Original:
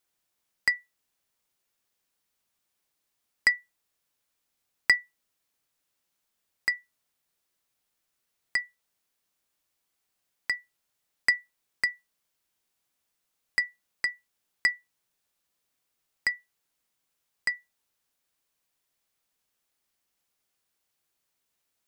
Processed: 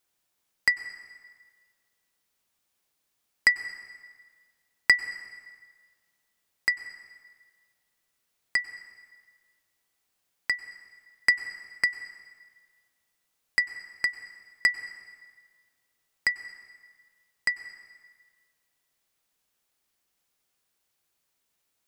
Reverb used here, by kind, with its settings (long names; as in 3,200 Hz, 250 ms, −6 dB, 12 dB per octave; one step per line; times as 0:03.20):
dense smooth reverb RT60 1.7 s, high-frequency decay 0.8×, pre-delay 85 ms, DRR 12.5 dB
level +2 dB